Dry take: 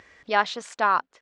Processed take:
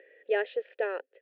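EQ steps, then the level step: vowel filter e; elliptic band-pass 290–3300 Hz, stop band 40 dB; peaking EQ 410 Hz +14 dB 0.63 oct; +3.5 dB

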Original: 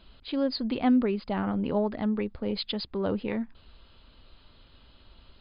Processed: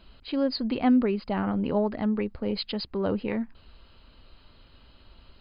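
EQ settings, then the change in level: band-stop 3.5 kHz, Q 8.1; +1.5 dB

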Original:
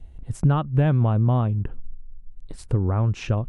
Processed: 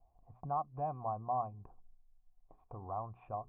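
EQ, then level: cascade formant filter a; hum notches 60/120/180/240/300/360/420 Hz; +1.0 dB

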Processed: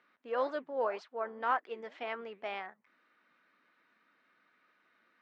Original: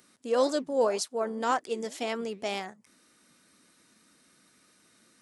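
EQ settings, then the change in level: band-pass filter 1.7 kHz, Q 0.78; low-pass 2.4 kHz 12 dB/octave; distance through air 53 m; 0.0 dB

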